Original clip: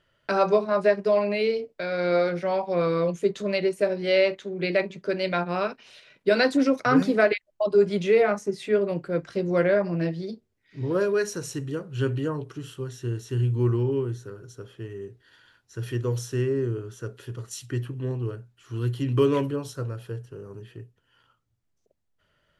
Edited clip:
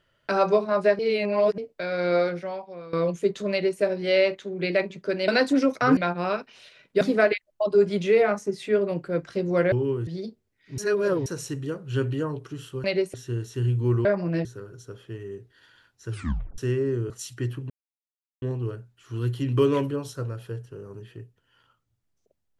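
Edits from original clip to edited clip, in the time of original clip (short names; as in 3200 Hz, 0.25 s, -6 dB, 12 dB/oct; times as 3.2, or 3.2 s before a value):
0.99–1.58 reverse
2.23–2.93 fade out quadratic, to -18 dB
3.51–3.81 copy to 12.89
6.32–7.01 move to 5.28
9.72–10.12 swap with 13.8–14.15
10.83–11.31 reverse
15.8 tape stop 0.48 s
16.8–17.42 cut
18.02 insert silence 0.72 s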